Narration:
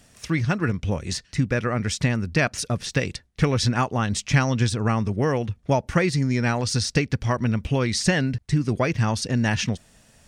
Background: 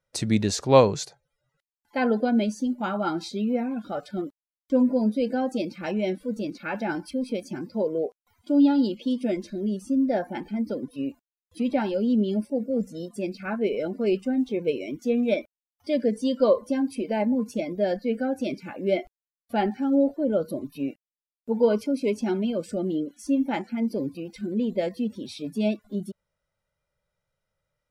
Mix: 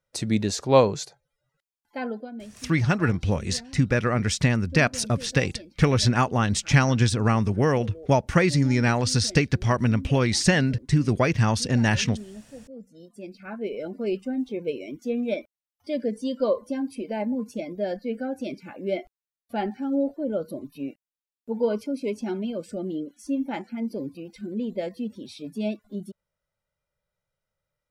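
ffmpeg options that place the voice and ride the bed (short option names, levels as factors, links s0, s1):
-filter_complex "[0:a]adelay=2400,volume=1.12[s0];[1:a]volume=3.98,afade=t=out:st=1.61:d=0.69:silence=0.16788,afade=t=in:st=12.83:d=1.17:silence=0.223872[s1];[s0][s1]amix=inputs=2:normalize=0"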